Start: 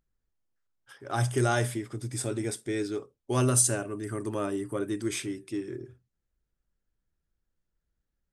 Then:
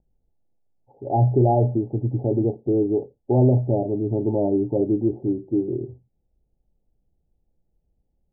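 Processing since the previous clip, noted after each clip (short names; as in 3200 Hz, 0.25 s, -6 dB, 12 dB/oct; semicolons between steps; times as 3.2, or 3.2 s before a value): Chebyshev low-pass 870 Hz, order 8; in parallel at +1 dB: limiter -25.5 dBFS, peak gain reduction 9.5 dB; on the sum: gain +5.5 dB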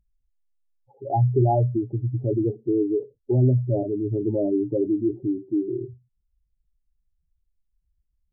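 spectral contrast raised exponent 2.1; gain -1.5 dB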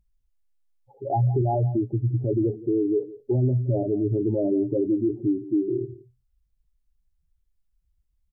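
limiter -18 dBFS, peak gain reduction 8 dB; echo 0.171 s -18 dB; gain +2 dB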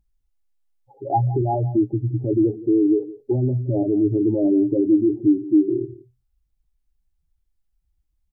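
small resonant body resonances 310/800 Hz, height 8 dB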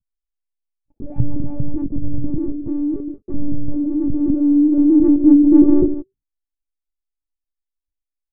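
sample leveller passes 5; low-pass sweep 190 Hz -> 550 Hz, 3.71–7.67; monotone LPC vocoder at 8 kHz 290 Hz; gain -4.5 dB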